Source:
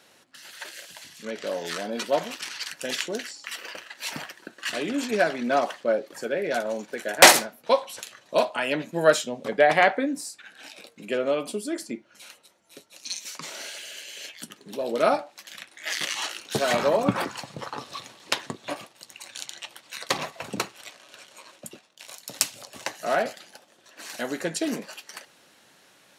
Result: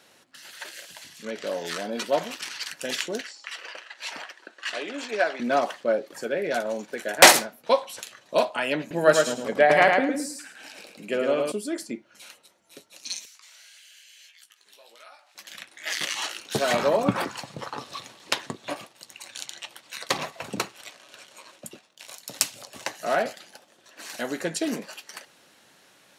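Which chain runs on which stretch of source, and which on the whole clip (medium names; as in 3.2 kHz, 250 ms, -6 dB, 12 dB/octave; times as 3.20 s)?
3.21–5.40 s: high-pass 470 Hz + distance through air 64 m + short-mantissa float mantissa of 8-bit
8.80–11.52 s: peaking EQ 3.6 kHz -5.5 dB 0.21 oct + feedback delay 107 ms, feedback 25%, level -4 dB
13.25–15.35 s: high-pass 1.5 kHz + compression 3:1, threshold -53 dBFS + doubling 18 ms -7 dB
whole clip: none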